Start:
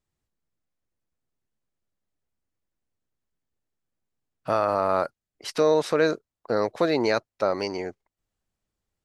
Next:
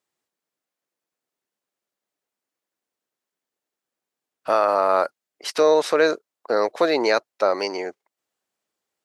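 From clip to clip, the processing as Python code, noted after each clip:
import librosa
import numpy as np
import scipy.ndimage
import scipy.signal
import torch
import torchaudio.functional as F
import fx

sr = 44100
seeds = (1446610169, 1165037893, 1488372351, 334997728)

y = scipy.signal.sosfilt(scipy.signal.butter(2, 370.0, 'highpass', fs=sr, output='sos'), x)
y = y * librosa.db_to_amplitude(5.0)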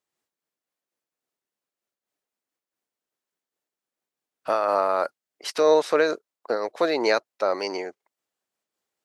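y = fx.am_noise(x, sr, seeds[0], hz=5.7, depth_pct=65)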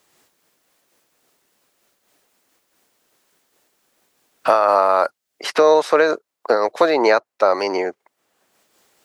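y = fx.dynamic_eq(x, sr, hz=950.0, q=0.78, threshold_db=-32.0, ratio=4.0, max_db=6)
y = fx.band_squash(y, sr, depth_pct=70)
y = y * librosa.db_to_amplitude(3.0)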